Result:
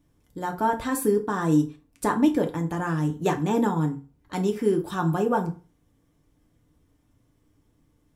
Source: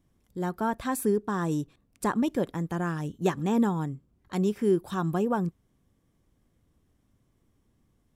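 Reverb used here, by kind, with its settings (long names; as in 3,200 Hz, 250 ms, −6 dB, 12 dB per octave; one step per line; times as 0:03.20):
feedback delay network reverb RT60 0.35 s, low-frequency decay 0.9×, high-frequency decay 0.75×, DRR 2.5 dB
level +2 dB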